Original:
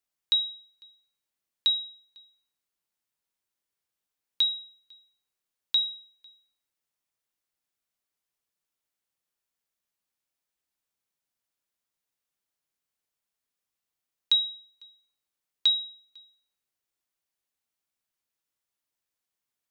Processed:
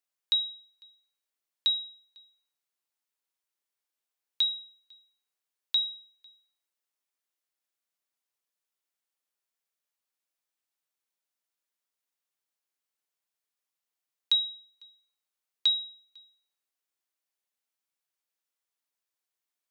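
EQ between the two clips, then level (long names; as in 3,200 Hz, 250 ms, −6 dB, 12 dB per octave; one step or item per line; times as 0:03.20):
Bessel high-pass filter 350 Hz
−2.0 dB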